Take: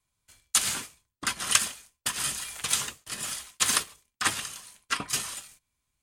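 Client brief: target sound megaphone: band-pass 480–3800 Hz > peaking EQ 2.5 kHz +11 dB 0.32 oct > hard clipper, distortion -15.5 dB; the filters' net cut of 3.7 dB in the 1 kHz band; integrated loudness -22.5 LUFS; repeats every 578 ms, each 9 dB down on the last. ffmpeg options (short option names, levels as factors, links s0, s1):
-af "highpass=480,lowpass=3800,equalizer=f=1000:t=o:g=-5,equalizer=f=2500:t=o:w=0.32:g=11,aecho=1:1:578|1156|1734|2312:0.355|0.124|0.0435|0.0152,asoftclip=type=hard:threshold=0.158,volume=2.66"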